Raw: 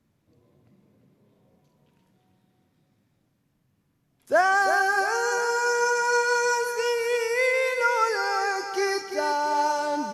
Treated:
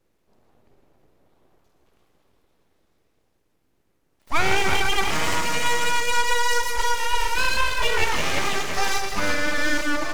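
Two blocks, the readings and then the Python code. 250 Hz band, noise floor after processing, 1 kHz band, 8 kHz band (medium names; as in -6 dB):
+5.0 dB, -68 dBFS, -1.0 dB, +4.5 dB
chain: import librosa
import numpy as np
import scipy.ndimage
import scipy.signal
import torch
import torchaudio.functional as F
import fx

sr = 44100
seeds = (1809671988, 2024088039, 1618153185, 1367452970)

p1 = fx.hum_notches(x, sr, base_hz=50, count=3)
p2 = fx.echo_multitap(p1, sr, ms=(52, 81, 114, 155, 268, 842), db=(-12.5, -16.5, -11.5, -10.0, -18.5, -14.5))
p3 = np.abs(p2)
p4 = fx.rider(p3, sr, range_db=10, speed_s=0.5)
p5 = p3 + (p4 * librosa.db_to_amplitude(-2.0))
y = p5 * librosa.db_to_amplitude(-1.5)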